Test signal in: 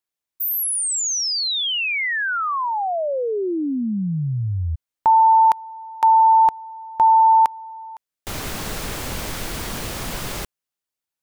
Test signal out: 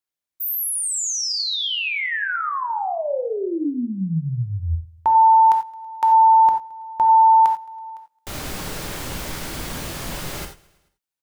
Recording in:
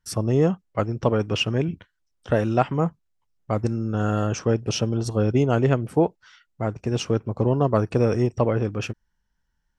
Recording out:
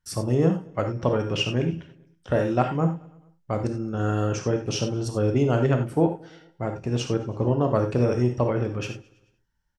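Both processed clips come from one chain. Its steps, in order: on a send: feedback echo 0.109 s, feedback 60%, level -23 dB; on the sum: non-linear reverb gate 0.11 s flat, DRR 4.5 dB; gain -3 dB

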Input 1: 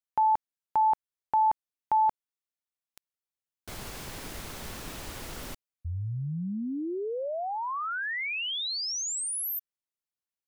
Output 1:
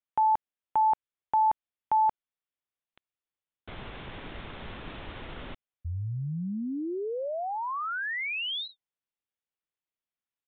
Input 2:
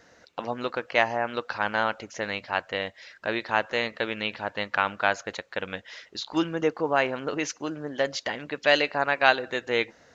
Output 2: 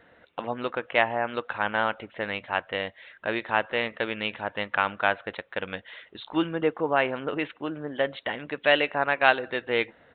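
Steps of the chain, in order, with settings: downsampling 8000 Hz

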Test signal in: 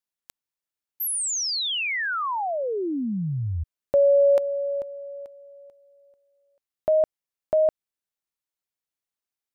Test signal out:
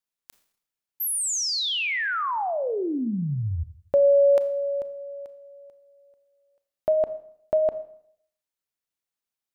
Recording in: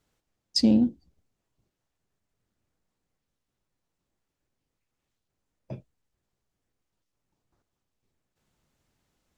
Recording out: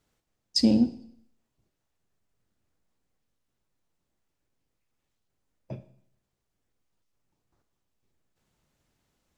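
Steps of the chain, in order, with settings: Schroeder reverb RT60 0.66 s, combs from 27 ms, DRR 12 dB

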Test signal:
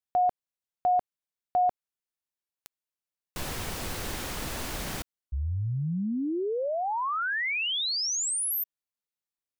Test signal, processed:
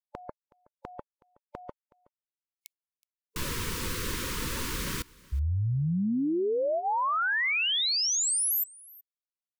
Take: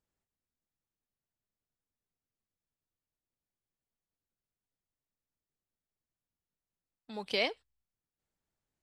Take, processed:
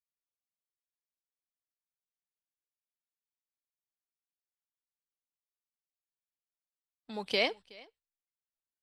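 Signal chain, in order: spectral noise reduction 27 dB; on a send: echo 0.371 s -23.5 dB; on the sum: gain +2 dB

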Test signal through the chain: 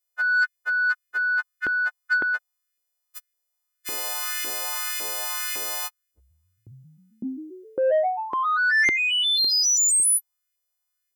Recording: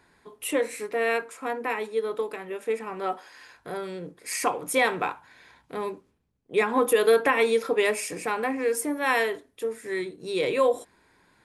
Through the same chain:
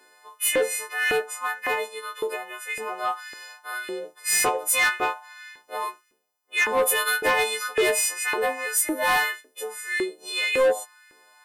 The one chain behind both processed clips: frequency quantiser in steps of 3 st; LFO high-pass saw up 1.8 Hz 340–2100 Hz; soft clip -15 dBFS

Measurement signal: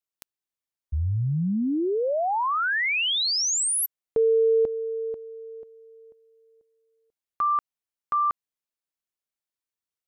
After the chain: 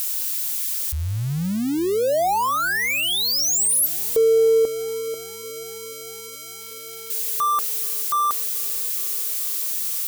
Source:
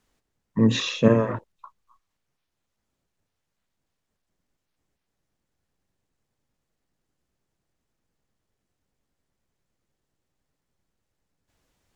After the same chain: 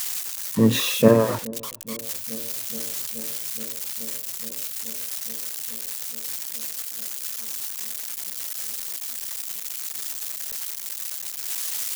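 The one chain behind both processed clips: switching spikes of -19.5 dBFS; dynamic EQ 620 Hz, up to +5 dB, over -38 dBFS, Q 0.72; on a send: dark delay 0.425 s, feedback 84%, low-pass 610 Hz, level -21.5 dB

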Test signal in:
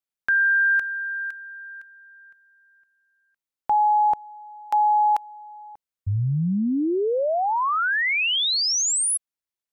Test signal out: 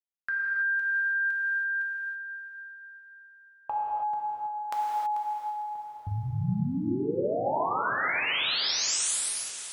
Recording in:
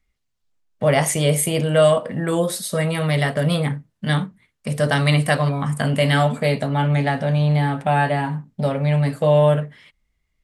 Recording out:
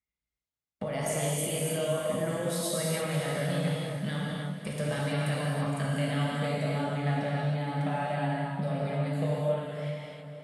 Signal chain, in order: HPF 51 Hz 24 dB/oct; gate with hold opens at -44 dBFS, range -19 dB; limiter -12 dBFS; compressor 4:1, threshold -36 dBFS; on a send: diffused feedback echo 0.513 s, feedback 43%, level -11 dB; on the sum: non-linear reverb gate 0.35 s flat, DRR -4.5 dB

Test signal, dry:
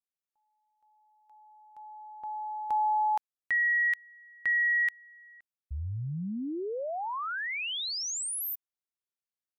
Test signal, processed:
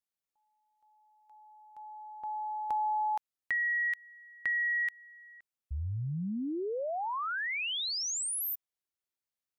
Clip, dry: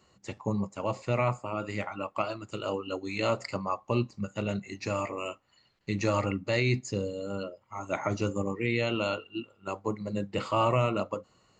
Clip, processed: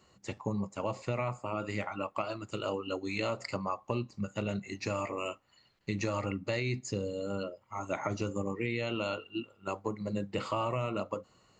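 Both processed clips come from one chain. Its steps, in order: compressor, threshold -29 dBFS

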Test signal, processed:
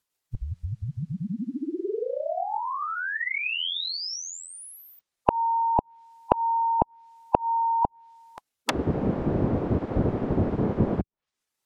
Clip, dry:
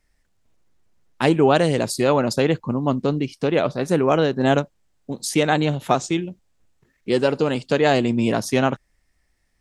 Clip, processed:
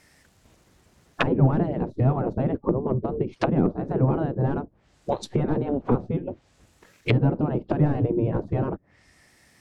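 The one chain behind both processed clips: spectral gate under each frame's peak -10 dB weak; sine folder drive 10 dB, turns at -6.5 dBFS; treble ducked by the level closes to 310 Hz, closed at -16.5 dBFS; gain +1.5 dB

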